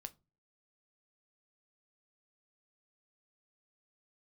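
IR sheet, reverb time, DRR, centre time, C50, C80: no single decay rate, 9.5 dB, 3 ms, 23.0 dB, 30.5 dB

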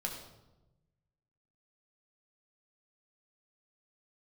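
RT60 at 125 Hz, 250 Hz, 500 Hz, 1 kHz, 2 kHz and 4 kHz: 1.7 s, 1.3 s, 1.1 s, 0.90 s, 0.70 s, 0.70 s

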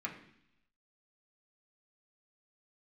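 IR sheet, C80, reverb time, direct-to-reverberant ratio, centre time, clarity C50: 12.0 dB, 0.70 s, -3.0 dB, 19 ms, 9.0 dB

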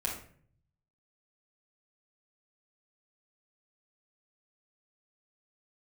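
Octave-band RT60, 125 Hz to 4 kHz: 1.2 s, 0.70 s, 0.60 s, 0.45 s, 0.50 s, 0.35 s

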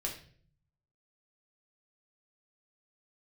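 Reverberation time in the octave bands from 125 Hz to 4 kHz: 1.1 s, 0.85 s, 0.60 s, 0.40 s, 0.45 s, 0.45 s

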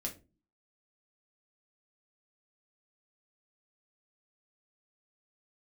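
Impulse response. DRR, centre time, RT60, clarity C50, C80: 0.0 dB, 16 ms, 0.30 s, 13.0 dB, 20.0 dB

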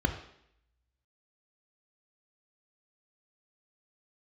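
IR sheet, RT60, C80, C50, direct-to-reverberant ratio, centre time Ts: 0.70 s, 12.0 dB, 9.5 dB, 6.0 dB, 17 ms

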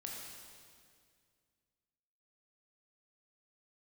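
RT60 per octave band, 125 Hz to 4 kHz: 2.7 s, 2.5 s, 2.2 s, 2.0 s, 2.0 s, 1.9 s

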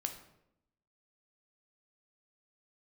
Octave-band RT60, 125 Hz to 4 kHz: 1.0 s, 1.0 s, 0.90 s, 0.75 s, 0.65 s, 0.55 s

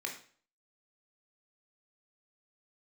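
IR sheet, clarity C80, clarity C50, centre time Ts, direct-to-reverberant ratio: 12.0 dB, 7.5 dB, 21 ms, 0.5 dB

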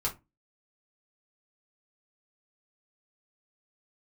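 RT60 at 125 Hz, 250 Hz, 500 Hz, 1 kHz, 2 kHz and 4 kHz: 0.35 s, 0.35 s, 0.20 s, 0.20 s, 0.20 s, 0.15 s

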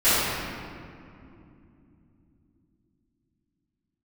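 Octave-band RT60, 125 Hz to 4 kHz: 4.9 s, 5.0 s, 3.0 s, 2.4 s, 2.0 s, 1.4 s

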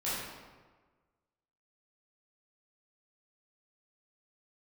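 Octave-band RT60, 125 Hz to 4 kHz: 1.5 s, 1.4 s, 1.4 s, 1.4 s, 1.1 s, 0.90 s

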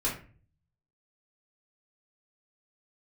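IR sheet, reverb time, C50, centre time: 0.40 s, 7.0 dB, 28 ms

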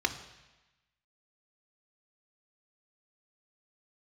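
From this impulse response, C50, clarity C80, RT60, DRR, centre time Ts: 12.0 dB, 13.5 dB, 1.1 s, 7.0 dB, 11 ms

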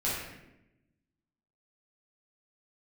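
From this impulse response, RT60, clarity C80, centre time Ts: 0.90 s, 3.0 dB, 71 ms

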